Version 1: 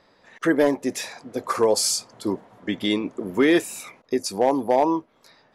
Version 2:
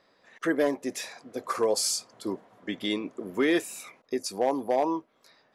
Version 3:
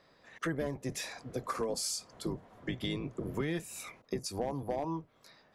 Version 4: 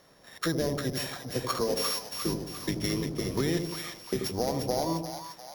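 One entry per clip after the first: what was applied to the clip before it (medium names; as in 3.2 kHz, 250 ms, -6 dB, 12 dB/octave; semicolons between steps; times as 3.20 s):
bass shelf 150 Hz -9 dB; band-stop 890 Hz, Q 14; trim -5 dB
octave divider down 1 oct, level +1 dB; compression 4:1, threshold -33 dBFS, peak gain reduction 13 dB
sorted samples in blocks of 8 samples; two-band feedback delay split 750 Hz, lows 84 ms, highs 350 ms, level -5.5 dB; trim +5 dB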